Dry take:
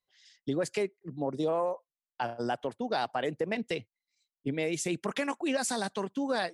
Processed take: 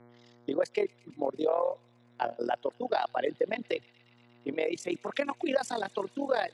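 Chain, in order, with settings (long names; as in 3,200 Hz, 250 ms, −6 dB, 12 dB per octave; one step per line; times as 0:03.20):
amplitude modulation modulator 41 Hz, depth 70%
hum with harmonics 120 Hz, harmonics 19, −49 dBFS −9 dB per octave
dynamic equaliser 560 Hz, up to +5 dB, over −46 dBFS, Q 1
reverb reduction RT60 1 s
three-way crossover with the lows and the highs turned down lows −20 dB, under 220 Hz, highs −13 dB, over 4,900 Hz
on a send: delay with a high-pass on its return 118 ms, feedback 82%, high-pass 2,900 Hz, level −19.5 dB
on the sum: level +2.5 dB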